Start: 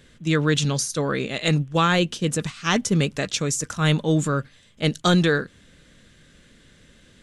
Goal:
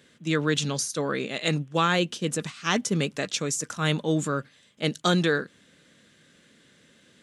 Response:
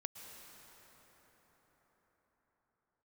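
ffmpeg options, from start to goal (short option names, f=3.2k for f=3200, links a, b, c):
-af "highpass=170,volume=-3dB"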